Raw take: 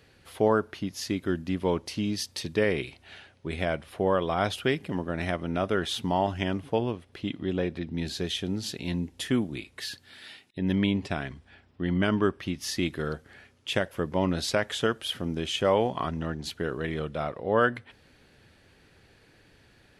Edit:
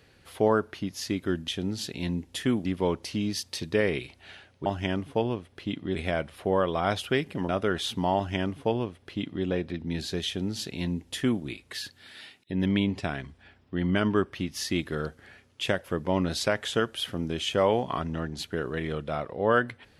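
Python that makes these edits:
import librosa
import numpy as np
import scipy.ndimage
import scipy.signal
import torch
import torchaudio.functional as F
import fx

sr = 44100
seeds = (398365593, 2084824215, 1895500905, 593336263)

y = fx.edit(x, sr, fx.cut(start_s=5.03, length_s=0.53),
    fx.duplicate(start_s=6.23, length_s=1.29, to_s=3.49),
    fx.duplicate(start_s=8.33, length_s=1.17, to_s=1.48), tone=tone)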